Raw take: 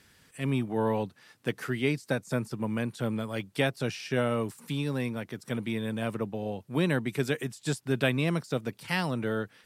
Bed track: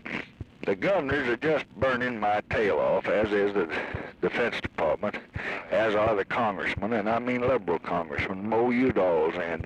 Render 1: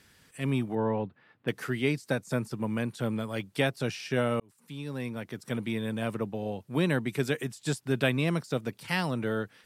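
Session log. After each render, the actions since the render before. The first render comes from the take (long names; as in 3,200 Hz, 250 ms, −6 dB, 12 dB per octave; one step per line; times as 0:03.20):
0:00.75–0:01.48: high-frequency loss of the air 460 metres
0:04.40–0:05.37: fade in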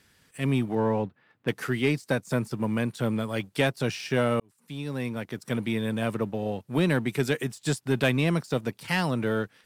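leveller curve on the samples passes 1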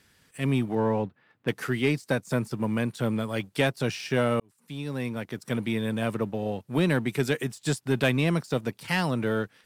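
no processing that can be heard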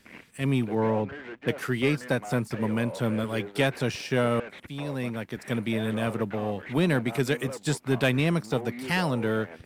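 mix in bed track −14 dB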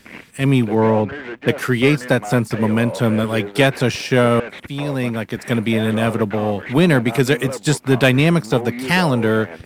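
level +10 dB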